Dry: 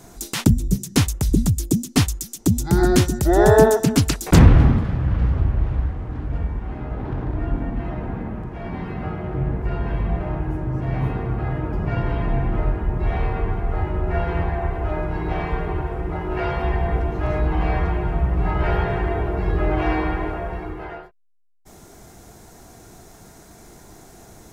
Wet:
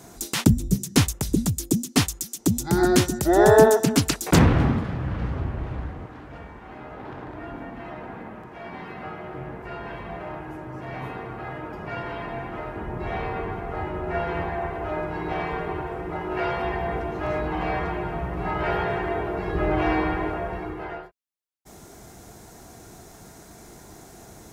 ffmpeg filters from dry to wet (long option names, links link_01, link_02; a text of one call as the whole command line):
ffmpeg -i in.wav -af "asetnsamples=nb_out_samples=441:pad=0,asendcmd='1.12 highpass f 210;6.06 highpass f 710;12.76 highpass f 280;19.55 highpass f 110;20.9 highpass f 47',highpass=frequency=95:poles=1" out.wav